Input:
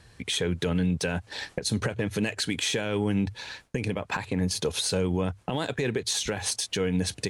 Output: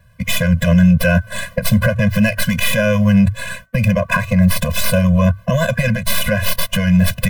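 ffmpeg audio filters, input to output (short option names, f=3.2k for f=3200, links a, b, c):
-filter_complex "[0:a]agate=range=-13dB:threshold=-48dB:ratio=16:detection=peak,bandreject=f=380.4:t=h:w=4,bandreject=f=760.8:t=h:w=4,bandreject=f=1.1412k:t=h:w=4,bandreject=f=1.5216k:t=h:w=4,bandreject=f=1.902k:t=h:w=4,bandreject=f=2.2824k:t=h:w=4,acrossover=split=210|3200[a][b][c];[c]aeval=exprs='abs(val(0))':c=same[d];[a][b][d]amix=inputs=3:normalize=0,apsyclip=23dB,afftfilt=real='re*eq(mod(floor(b*sr/1024/240),2),0)':imag='im*eq(mod(floor(b*sr/1024/240),2),0)':win_size=1024:overlap=0.75,volume=-5dB"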